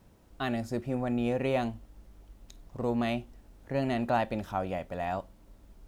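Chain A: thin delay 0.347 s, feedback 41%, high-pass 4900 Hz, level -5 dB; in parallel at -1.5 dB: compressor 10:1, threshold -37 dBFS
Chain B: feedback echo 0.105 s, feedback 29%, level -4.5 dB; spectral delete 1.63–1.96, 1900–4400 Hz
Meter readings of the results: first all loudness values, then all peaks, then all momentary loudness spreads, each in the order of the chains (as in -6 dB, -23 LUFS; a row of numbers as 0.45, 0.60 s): -30.0, -31.0 LUFS; -14.5, -15.0 dBFS; 20, 14 LU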